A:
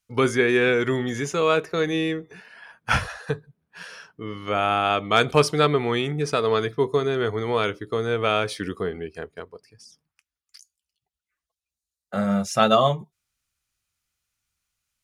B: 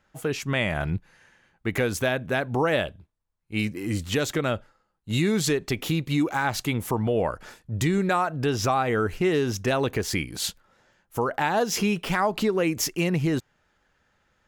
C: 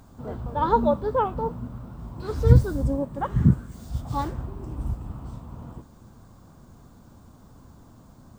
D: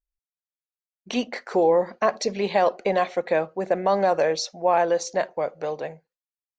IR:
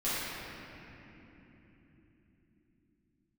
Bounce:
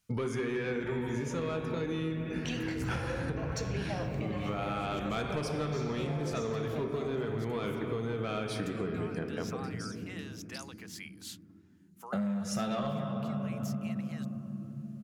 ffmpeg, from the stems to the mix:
-filter_complex "[0:a]equalizer=frequency=180:width=0.75:gain=9,volume=1.5dB,asplit=2[link_01][link_02];[link_02]volume=-21dB[link_03];[1:a]adelay=850,volume=-14dB[link_04];[2:a]acompressor=threshold=-45dB:ratio=1.5,equalizer=frequency=150:width_type=o:width=2.5:gain=11,adelay=300,volume=-7.5dB,asplit=2[link_05][link_06];[link_06]volume=-11.5dB[link_07];[3:a]alimiter=limit=-14.5dB:level=0:latency=1,aexciter=amount=1.1:drive=8.7:freq=2400,adelay=1350,volume=-9.5dB,asplit=2[link_08][link_09];[link_09]volume=-11.5dB[link_10];[link_04][link_05]amix=inputs=2:normalize=0,highpass=950,alimiter=level_in=9dB:limit=-24dB:level=0:latency=1:release=479,volume=-9dB,volume=0dB[link_11];[link_01][link_08]amix=inputs=2:normalize=0,asoftclip=type=tanh:threshold=-11.5dB,alimiter=limit=-21dB:level=0:latency=1:release=277,volume=0dB[link_12];[4:a]atrim=start_sample=2205[link_13];[link_03][link_07][link_10]amix=inputs=3:normalize=0[link_14];[link_14][link_13]afir=irnorm=-1:irlink=0[link_15];[link_11][link_12][link_15]amix=inputs=3:normalize=0,acompressor=threshold=-31dB:ratio=6"

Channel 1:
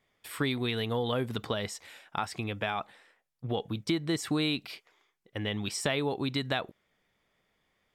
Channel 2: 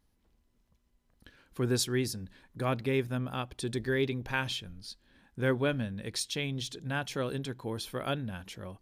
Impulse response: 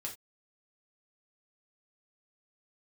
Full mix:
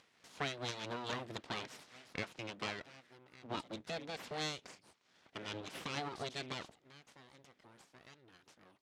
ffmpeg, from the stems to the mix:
-filter_complex "[0:a]tremolo=f=4.5:d=0.51,volume=-3.5dB[link_01];[1:a]tiltshelf=frequency=970:gain=-4.5,acompressor=threshold=-49dB:ratio=2,volume=-11dB[link_02];[link_01][link_02]amix=inputs=2:normalize=0,acompressor=mode=upward:threshold=-52dB:ratio=2.5,aeval=exprs='abs(val(0))':channel_layout=same,highpass=140,lowpass=6600"

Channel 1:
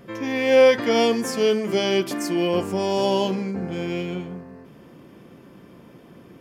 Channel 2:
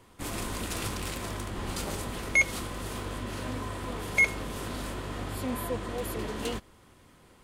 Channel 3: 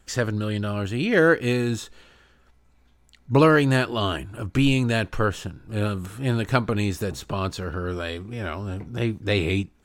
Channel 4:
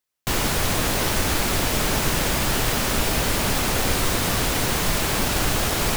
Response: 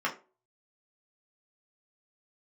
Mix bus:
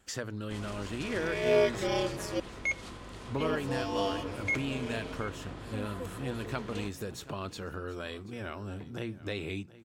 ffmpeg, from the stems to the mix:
-filter_complex "[0:a]highpass=frequency=250:width=0.5412,highpass=frequency=250:width=1.3066,aeval=exprs='val(0)*sin(2*PI*100*n/s)':channel_layout=same,adelay=950,volume=-8dB,asplit=3[link_01][link_02][link_03];[link_01]atrim=end=2.4,asetpts=PTS-STARTPTS,afade=type=out:start_time=2.396:duration=0.004:curve=hsin[link_04];[link_02]atrim=start=2.4:end=3.4,asetpts=PTS-STARTPTS,volume=0[link_05];[link_03]atrim=start=3.4,asetpts=PTS-STARTPTS,afade=type=in:duration=0.004:curve=hsin[link_06];[link_04][link_05][link_06]concat=n=3:v=0:a=1[link_07];[1:a]lowpass=6400,adelay=300,volume=-8.5dB,asplit=2[link_08][link_09];[link_09]volume=-19.5dB[link_10];[2:a]highpass=frequency=100:poles=1,bandreject=frequency=60:width_type=h:width=6,bandreject=frequency=120:width_type=h:width=6,bandreject=frequency=180:width_type=h:width=6,acompressor=threshold=-34dB:ratio=2.5,volume=-3.5dB,asplit=2[link_11][link_12];[link_12]volume=-18.5dB[link_13];[link_10][link_13]amix=inputs=2:normalize=0,aecho=0:1:733:1[link_14];[link_07][link_08][link_11][link_14]amix=inputs=4:normalize=0"

